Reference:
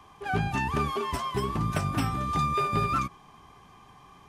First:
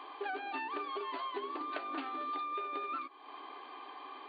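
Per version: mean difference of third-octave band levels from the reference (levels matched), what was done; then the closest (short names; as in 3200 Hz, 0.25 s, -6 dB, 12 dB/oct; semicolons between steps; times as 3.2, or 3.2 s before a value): 12.5 dB: brick-wall FIR band-pass 260–4700 Hz; compressor 8:1, threshold -43 dBFS, peak gain reduction 19 dB; gain +6 dB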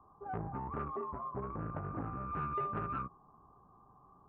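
8.5 dB: elliptic low-pass 1300 Hz, stop band 40 dB; core saturation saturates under 570 Hz; gain -8 dB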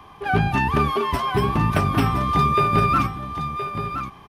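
4.0 dB: bell 7300 Hz -11.5 dB 0.79 oct; echo 1.019 s -9 dB; gain +8 dB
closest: third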